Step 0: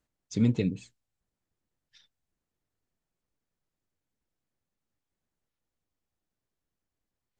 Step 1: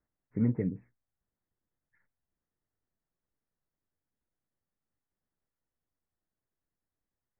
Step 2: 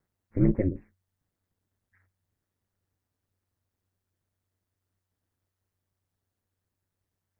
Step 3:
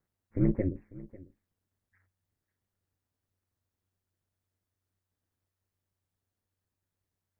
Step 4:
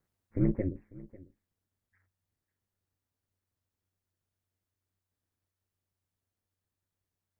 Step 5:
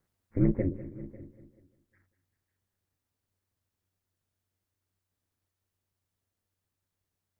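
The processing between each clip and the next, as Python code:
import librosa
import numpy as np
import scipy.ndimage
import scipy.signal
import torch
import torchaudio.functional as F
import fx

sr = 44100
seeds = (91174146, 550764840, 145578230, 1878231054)

y1 = scipy.signal.sosfilt(scipy.signal.butter(16, 2100.0, 'lowpass', fs=sr, output='sos'), x)
y1 = y1 * 10.0 ** (-3.5 / 20.0)
y2 = y1 * np.sin(2.0 * np.pi * 93.0 * np.arange(len(y1)) / sr)
y2 = y2 * 10.0 ** (8.5 / 20.0)
y3 = y2 + 10.0 ** (-20.0 / 20.0) * np.pad(y2, (int(546 * sr / 1000.0), 0))[:len(y2)]
y3 = y3 * 10.0 ** (-3.5 / 20.0)
y4 = fx.rider(y3, sr, range_db=4, speed_s=0.5)
y5 = fx.echo_feedback(y4, sr, ms=196, feedback_pct=57, wet_db=-16.0)
y5 = y5 * 10.0 ** (2.5 / 20.0)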